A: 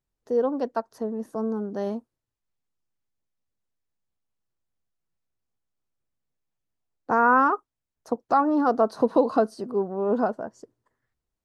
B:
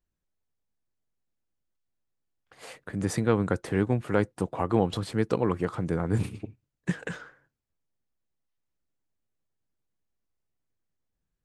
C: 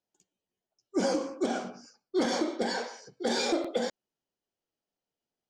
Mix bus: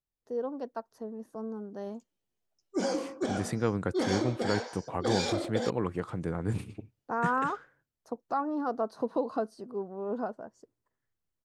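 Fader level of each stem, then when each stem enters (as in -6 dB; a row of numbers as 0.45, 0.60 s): -10.0, -5.0, -2.5 dB; 0.00, 0.35, 1.80 s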